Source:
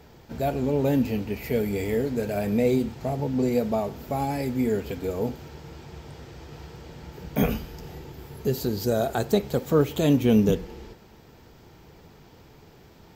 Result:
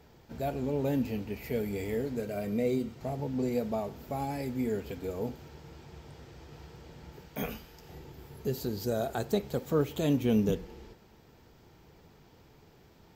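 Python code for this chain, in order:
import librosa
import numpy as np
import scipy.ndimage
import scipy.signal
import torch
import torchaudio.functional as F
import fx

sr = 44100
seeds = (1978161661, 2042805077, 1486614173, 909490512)

y = fx.notch_comb(x, sr, f0_hz=840.0, at=(2.21, 3.01))
y = fx.low_shelf(y, sr, hz=480.0, db=-8.5, at=(7.21, 7.89))
y = y * librosa.db_to_amplitude(-7.0)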